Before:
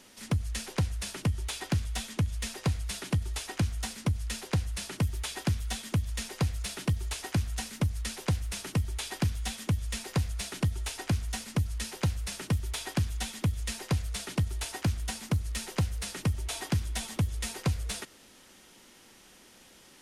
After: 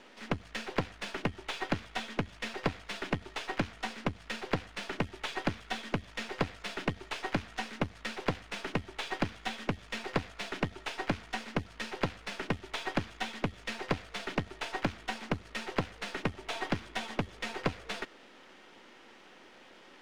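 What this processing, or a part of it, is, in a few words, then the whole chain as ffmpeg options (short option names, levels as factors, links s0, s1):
crystal radio: -af "highpass=290,lowpass=2600,aeval=exprs='if(lt(val(0),0),0.447*val(0),val(0))':c=same,volume=2.37"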